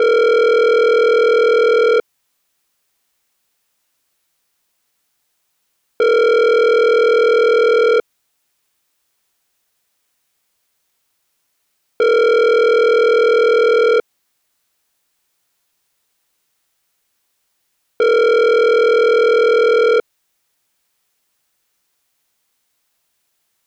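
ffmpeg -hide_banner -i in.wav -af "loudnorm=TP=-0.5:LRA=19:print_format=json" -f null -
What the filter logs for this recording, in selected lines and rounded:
"input_i" : "-12.8",
"input_tp" : "-8.2",
"input_lra" : "3.1",
"input_thresh" : "-27.5",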